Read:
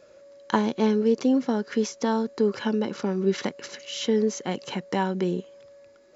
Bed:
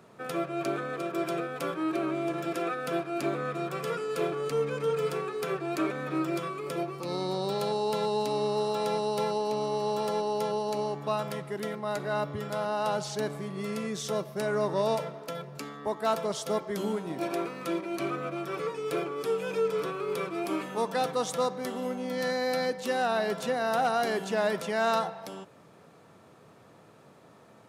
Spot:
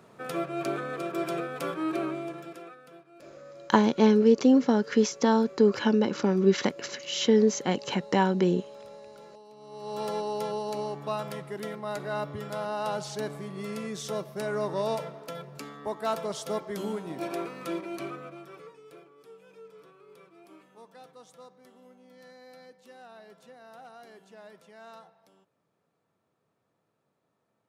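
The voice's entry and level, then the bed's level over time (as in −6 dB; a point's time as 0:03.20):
3.20 s, +2.0 dB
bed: 0:02.02 0 dB
0:02.98 −21.5 dB
0:09.56 −21.5 dB
0:10.02 −2 dB
0:17.87 −2 dB
0:19.07 −22 dB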